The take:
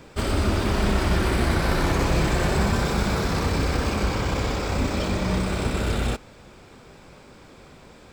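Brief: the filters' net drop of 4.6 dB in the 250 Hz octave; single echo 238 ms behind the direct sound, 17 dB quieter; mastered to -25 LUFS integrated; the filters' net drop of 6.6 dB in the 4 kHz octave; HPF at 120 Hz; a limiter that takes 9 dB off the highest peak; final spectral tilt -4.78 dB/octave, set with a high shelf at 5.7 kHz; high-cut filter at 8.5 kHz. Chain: high-pass 120 Hz; low-pass 8.5 kHz; peaking EQ 250 Hz -6 dB; peaking EQ 4 kHz -6 dB; treble shelf 5.7 kHz -6 dB; peak limiter -23 dBFS; delay 238 ms -17 dB; trim +7 dB

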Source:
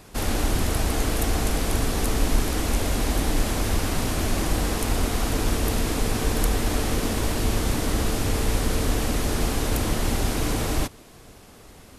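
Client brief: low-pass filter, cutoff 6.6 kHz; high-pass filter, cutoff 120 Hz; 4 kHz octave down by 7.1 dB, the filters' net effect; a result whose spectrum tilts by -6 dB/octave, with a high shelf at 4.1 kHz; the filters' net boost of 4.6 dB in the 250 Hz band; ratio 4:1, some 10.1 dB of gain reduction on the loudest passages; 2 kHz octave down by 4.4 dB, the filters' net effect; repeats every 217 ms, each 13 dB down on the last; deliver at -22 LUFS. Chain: high-pass 120 Hz; low-pass 6.6 kHz; peaking EQ 250 Hz +6 dB; peaking EQ 2 kHz -3.5 dB; peaking EQ 4 kHz -4.5 dB; treble shelf 4.1 kHz -5 dB; compression 4:1, threshold -33 dBFS; feedback delay 217 ms, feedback 22%, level -13 dB; trim +13 dB

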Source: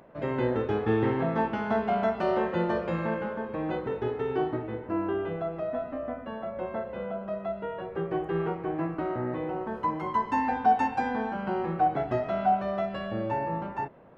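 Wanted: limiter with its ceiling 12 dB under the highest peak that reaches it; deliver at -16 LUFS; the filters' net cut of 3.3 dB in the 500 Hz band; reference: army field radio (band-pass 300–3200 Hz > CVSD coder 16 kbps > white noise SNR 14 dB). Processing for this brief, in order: peaking EQ 500 Hz -3.5 dB; peak limiter -26 dBFS; band-pass 300–3200 Hz; CVSD coder 16 kbps; white noise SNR 14 dB; trim +20.5 dB

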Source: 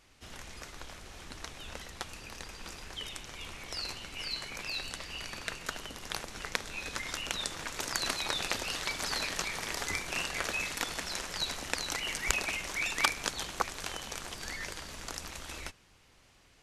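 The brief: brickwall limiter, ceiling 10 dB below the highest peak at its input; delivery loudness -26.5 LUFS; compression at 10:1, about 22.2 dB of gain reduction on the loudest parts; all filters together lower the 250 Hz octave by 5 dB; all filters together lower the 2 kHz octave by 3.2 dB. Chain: peaking EQ 250 Hz -7 dB; peaking EQ 2 kHz -4 dB; compression 10:1, threshold -48 dBFS; trim +25 dB; peak limiter -9.5 dBFS

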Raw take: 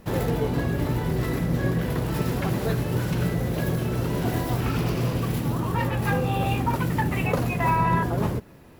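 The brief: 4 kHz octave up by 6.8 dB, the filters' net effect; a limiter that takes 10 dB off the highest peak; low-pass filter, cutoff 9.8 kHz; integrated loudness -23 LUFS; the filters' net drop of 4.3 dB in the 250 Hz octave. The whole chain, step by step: low-pass 9.8 kHz; peaking EQ 250 Hz -7 dB; peaking EQ 4 kHz +9 dB; trim +6.5 dB; peak limiter -14 dBFS

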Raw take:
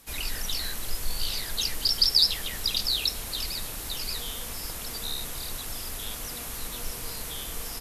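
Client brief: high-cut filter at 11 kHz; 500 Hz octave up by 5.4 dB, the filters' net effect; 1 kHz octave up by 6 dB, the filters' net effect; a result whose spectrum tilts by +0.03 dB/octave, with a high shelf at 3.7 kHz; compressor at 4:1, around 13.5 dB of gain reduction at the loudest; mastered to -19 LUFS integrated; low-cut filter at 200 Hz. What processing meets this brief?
high-pass 200 Hz; low-pass 11 kHz; peaking EQ 500 Hz +5 dB; peaking EQ 1 kHz +5.5 dB; treble shelf 3.7 kHz +7.5 dB; compression 4:1, threshold -28 dBFS; trim +11 dB

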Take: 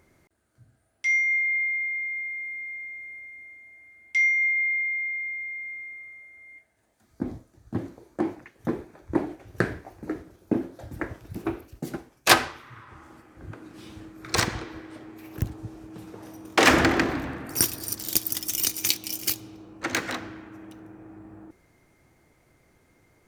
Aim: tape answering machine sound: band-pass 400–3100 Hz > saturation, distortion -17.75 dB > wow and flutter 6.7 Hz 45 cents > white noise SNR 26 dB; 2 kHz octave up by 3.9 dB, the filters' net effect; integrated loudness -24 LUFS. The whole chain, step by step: band-pass 400–3100 Hz; peaking EQ 2 kHz +5 dB; saturation -9.5 dBFS; wow and flutter 6.7 Hz 45 cents; white noise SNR 26 dB

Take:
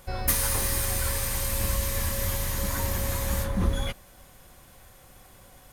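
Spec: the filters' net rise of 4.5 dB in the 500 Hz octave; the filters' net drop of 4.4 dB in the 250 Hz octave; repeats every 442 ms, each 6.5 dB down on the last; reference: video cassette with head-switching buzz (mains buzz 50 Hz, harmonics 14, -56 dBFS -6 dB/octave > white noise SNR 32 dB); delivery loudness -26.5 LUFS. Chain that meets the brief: peaking EQ 250 Hz -8 dB; peaking EQ 500 Hz +6.5 dB; feedback delay 442 ms, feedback 47%, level -6.5 dB; mains buzz 50 Hz, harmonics 14, -56 dBFS -6 dB/octave; white noise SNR 32 dB

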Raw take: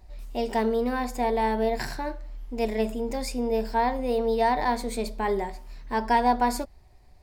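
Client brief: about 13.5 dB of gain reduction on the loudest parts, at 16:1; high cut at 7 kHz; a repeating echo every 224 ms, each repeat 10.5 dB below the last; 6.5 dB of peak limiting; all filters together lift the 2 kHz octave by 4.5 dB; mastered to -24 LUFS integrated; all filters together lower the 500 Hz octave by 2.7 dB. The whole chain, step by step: low-pass 7 kHz; peaking EQ 500 Hz -3.5 dB; peaking EQ 2 kHz +5.5 dB; compression 16:1, threshold -31 dBFS; peak limiter -28.5 dBFS; feedback delay 224 ms, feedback 30%, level -10.5 dB; trim +14.5 dB

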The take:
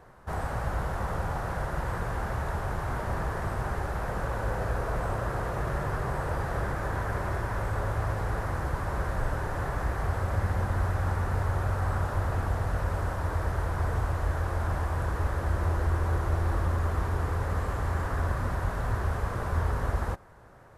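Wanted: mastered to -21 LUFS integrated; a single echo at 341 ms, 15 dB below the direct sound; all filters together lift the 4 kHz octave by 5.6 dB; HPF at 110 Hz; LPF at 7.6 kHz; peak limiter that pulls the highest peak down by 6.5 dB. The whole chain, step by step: high-pass 110 Hz; low-pass 7.6 kHz; peaking EQ 4 kHz +7.5 dB; peak limiter -25.5 dBFS; delay 341 ms -15 dB; trim +14 dB

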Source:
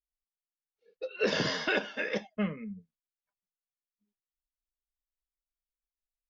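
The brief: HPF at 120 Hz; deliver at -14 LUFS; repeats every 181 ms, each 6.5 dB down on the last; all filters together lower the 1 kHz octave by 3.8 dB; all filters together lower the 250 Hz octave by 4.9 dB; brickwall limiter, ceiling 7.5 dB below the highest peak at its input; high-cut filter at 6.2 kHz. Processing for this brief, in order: high-pass 120 Hz; low-pass 6.2 kHz; peaking EQ 250 Hz -6 dB; peaking EQ 1 kHz -5 dB; peak limiter -26 dBFS; feedback delay 181 ms, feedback 47%, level -6.5 dB; trim +22.5 dB

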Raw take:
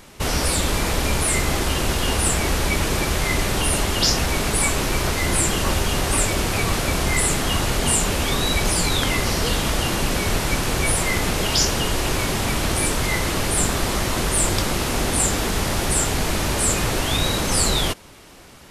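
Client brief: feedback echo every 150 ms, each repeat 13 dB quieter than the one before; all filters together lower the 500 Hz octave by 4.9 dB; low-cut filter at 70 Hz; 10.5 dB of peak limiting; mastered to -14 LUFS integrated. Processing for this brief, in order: high-pass 70 Hz; peaking EQ 500 Hz -6.5 dB; peak limiter -16.5 dBFS; feedback delay 150 ms, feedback 22%, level -13 dB; trim +10.5 dB

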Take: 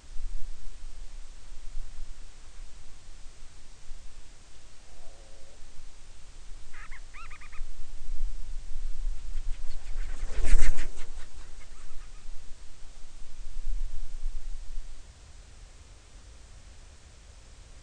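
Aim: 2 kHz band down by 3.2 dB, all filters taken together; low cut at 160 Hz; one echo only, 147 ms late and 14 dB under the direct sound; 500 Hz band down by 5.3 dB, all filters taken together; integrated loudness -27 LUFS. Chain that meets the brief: high-pass 160 Hz; peaking EQ 500 Hz -6.5 dB; peaking EQ 2 kHz -3.5 dB; delay 147 ms -14 dB; trim +25.5 dB

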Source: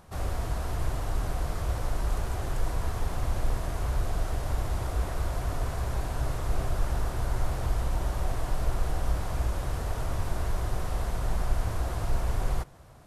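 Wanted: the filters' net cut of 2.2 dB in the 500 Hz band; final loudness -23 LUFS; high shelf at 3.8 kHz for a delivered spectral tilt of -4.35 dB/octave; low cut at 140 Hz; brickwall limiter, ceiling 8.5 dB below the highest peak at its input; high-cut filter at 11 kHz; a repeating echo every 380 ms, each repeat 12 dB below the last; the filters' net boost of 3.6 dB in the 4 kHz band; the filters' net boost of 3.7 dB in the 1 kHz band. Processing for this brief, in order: high-pass 140 Hz; low-pass 11 kHz; peaking EQ 500 Hz -5.5 dB; peaking EQ 1 kHz +6.5 dB; treble shelf 3.8 kHz -3.5 dB; peaking EQ 4 kHz +6.5 dB; peak limiter -32 dBFS; feedback delay 380 ms, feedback 25%, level -12 dB; trim +17.5 dB

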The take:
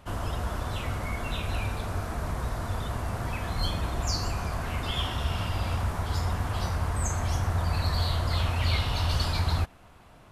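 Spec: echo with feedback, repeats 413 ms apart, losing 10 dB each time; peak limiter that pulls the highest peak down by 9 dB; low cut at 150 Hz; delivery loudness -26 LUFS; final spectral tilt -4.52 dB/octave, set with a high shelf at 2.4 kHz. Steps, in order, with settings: high-pass 150 Hz; treble shelf 2.4 kHz -4 dB; peak limiter -28 dBFS; feedback delay 413 ms, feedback 32%, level -10 dB; trim +11 dB

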